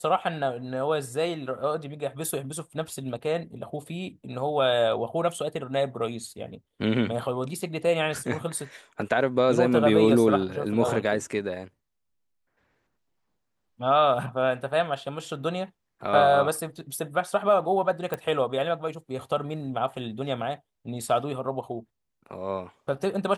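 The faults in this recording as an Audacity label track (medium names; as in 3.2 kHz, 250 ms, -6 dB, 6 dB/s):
18.140000	18.140000	pop -16 dBFS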